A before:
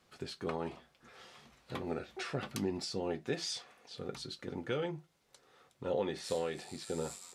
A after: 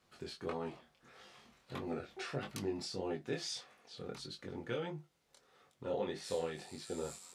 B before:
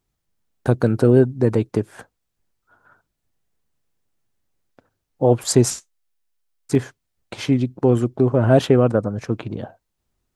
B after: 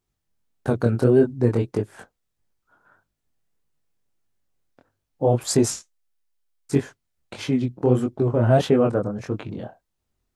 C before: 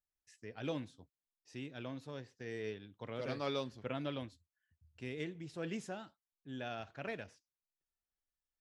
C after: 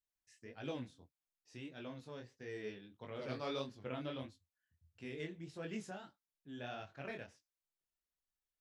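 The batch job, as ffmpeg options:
-af "flanger=delay=19.5:depth=6.5:speed=1.6"

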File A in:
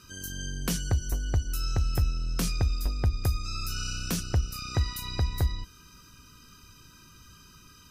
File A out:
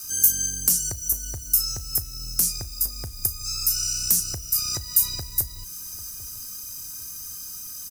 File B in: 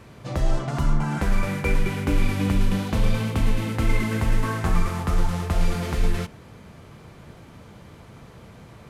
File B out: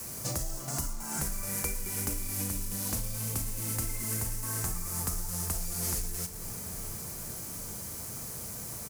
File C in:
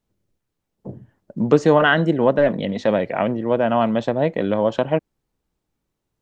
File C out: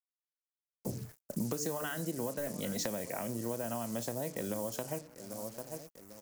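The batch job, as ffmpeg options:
-filter_complex "[0:a]bandreject=f=147.4:t=h:w=4,bandreject=f=294.8:t=h:w=4,bandreject=f=442.2:t=h:w=4,adynamicequalizer=threshold=0.00891:dfrequency=110:dqfactor=3.4:tfrequency=110:tqfactor=3.4:attack=5:release=100:ratio=0.375:range=2:mode=boostabove:tftype=bell,asplit=2[s0][s1];[s1]adelay=34,volume=0.211[s2];[s0][s2]amix=inputs=2:normalize=0,asplit=2[s3][s4];[s4]adelay=794,lowpass=f=1500:p=1,volume=0.0668,asplit=2[s5][s6];[s6]adelay=794,lowpass=f=1500:p=1,volume=0.37[s7];[s3][s5][s7]amix=inputs=3:normalize=0,acompressor=threshold=0.0251:ratio=10,highshelf=f=6200:g=8.5,acrusher=bits=8:mix=0:aa=0.5,acrossover=split=360|3000[s8][s9][s10];[s9]acompressor=threshold=0.0178:ratio=6[s11];[s8][s11][s10]amix=inputs=3:normalize=0,aexciter=amount=4.8:drive=8.5:freq=5000,volume=0.891"

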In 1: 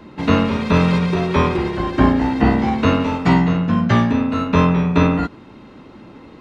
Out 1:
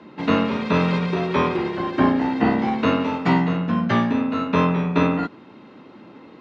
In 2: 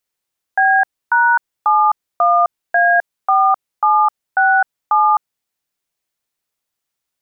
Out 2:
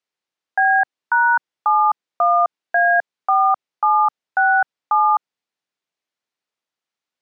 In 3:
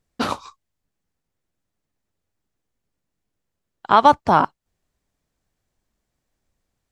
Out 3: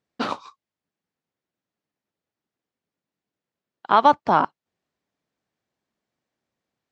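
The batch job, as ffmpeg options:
-af "highpass=170,lowpass=5000,volume=0.75"

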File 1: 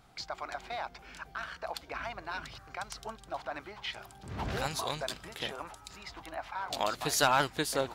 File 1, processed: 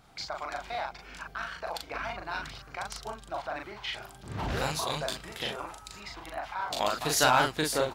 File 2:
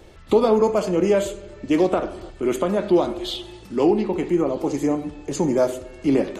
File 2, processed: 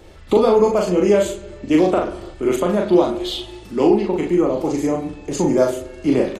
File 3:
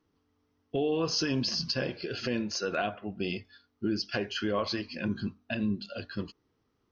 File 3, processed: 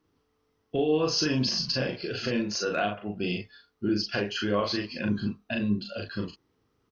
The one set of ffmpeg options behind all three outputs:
-filter_complex "[0:a]asplit=2[s0][s1];[s1]adelay=39,volume=0.708[s2];[s0][s2]amix=inputs=2:normalize=0,volume=1.19"

